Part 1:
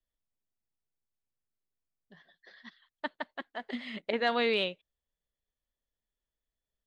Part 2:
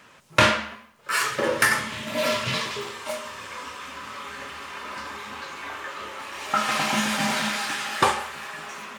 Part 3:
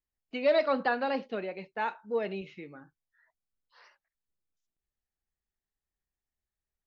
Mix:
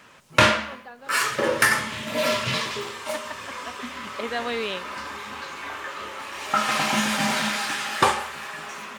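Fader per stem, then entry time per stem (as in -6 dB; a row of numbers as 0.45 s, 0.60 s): -0.5 dB, +1.0 dB, -15.0 dB; 0.10 s, 0.00 s, 0.00 s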